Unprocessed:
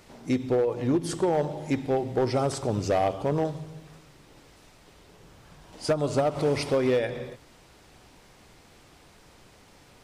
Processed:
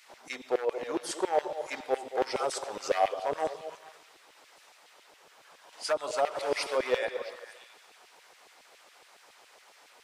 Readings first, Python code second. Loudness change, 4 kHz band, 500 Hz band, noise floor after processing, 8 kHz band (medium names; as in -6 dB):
-5.0 dB, 0.0 dB, -4.5 dB, -59 dBFS, -0.5 dB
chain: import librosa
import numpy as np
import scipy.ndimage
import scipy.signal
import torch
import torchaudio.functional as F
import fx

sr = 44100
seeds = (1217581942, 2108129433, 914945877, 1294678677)

y = fx.filter_lfo_highpass(x, sr, shape='saw_down', hz=7.2, low_hz=470.0, high_hz=2500.0, q=1.4)
y = fx.echo_stepped(y, sr, ms=223, hz=510.0, octaves=1.4, feedback_pct=70, wet_db=-8.5)
y = y * 10.0 ** (-1.0 / 20.0)